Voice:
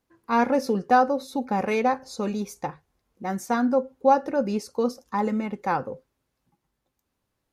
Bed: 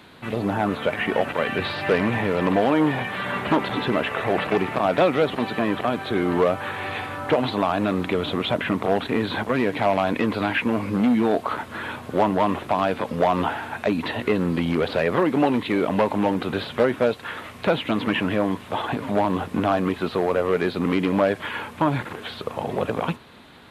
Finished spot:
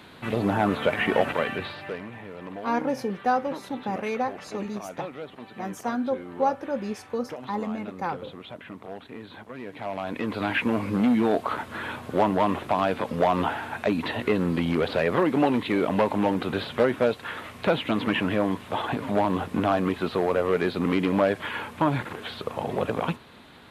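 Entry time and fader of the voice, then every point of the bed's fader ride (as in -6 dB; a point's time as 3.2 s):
2.35 s, -5.0 dB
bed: 1.31 s 0 dB
2.08 s -17.5 dB
9.54 s -17.5 dB
10.56 s -2 dB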